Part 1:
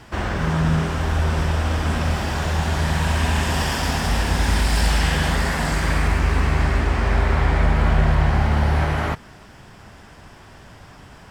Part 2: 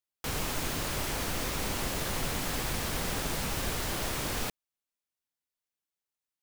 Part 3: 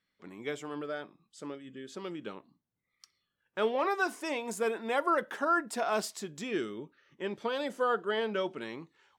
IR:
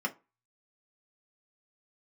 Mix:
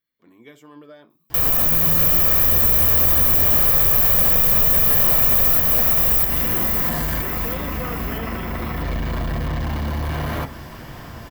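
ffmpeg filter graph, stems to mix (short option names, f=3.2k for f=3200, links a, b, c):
-filter_complex "[0:a]asoftclip=type=tanh:threshold=-23.5dB,adelay=1300,volume=-1.5dB,asplit=3[a][b][c];[b]volume=-9dB[d];[c]volume=-22dB[e];[1:a]aecho=1:1:1.7:0.82,adelay=1100,volume=2dB,asplit=2[f][g];[g]volume=-3dB[h];[2:a]acompressor=threshold=-32dB:ratio=6,volume=-5dB,asplit=3[i][j][k];[j]volume=-11.5dB[l];[k]apad=whole_len=555708[m];[a][m]sidechaincompress=threshold=-49dB:ratio=8:attack=16:release=250[n];[3:a]atrim=start_sample=2205[o];[d][l]amix=inputs=2:normalize=0[p];[p][o]afir=irnorm=-1:irlink=0[q];[e][h]amix=inputs=2:normalize=0,aecho=0:1:646|1292|1938|2584|3230|3876:1|0.46|0.212|0.0973|0.0448|0.0206[r];[n][f][i][q][r]amix=inputs=5:normalize=0,dynaudnorm=f=270:g=13:m=8dB,aexciter=amount=8.7:drive=4:freq=12k,acrossover=split=2800|7500[s][t][u];[s]acompressor=threshold=-22dB:ratio=4[v];[t]acompressor=threshold=-42dB:ratio=4[w];[u]acompressor=threshold=-13dB:ratio=4[x];[v][w][x]amix=inputs=3:normalize=0"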